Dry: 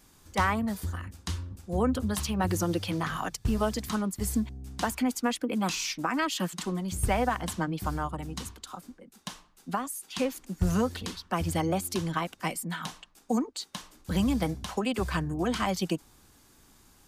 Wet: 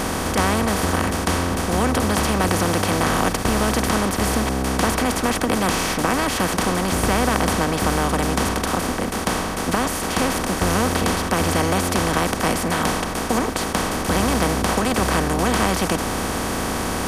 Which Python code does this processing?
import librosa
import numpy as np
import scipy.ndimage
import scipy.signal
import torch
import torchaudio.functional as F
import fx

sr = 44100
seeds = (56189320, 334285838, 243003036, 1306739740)

y = fx.bin_compress(x, sr, power=0.2)
y = y * 10.0 ** (-1.0 / 20.0)